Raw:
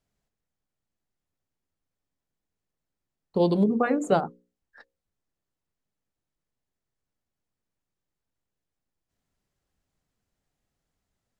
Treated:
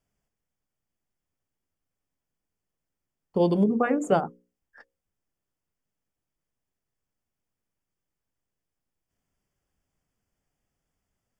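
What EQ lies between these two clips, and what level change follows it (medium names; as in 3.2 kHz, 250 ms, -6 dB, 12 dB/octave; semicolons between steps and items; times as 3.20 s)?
Butterworth band-stop 4 kHz, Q 3.9; 0.0 dB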